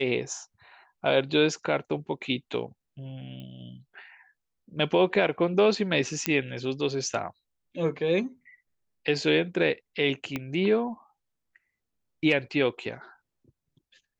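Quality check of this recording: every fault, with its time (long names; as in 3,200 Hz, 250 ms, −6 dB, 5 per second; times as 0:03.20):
0:03.40: click −31 dBFS
0:06.26: click −8 dBFS
0:10.36: click −16 dBFS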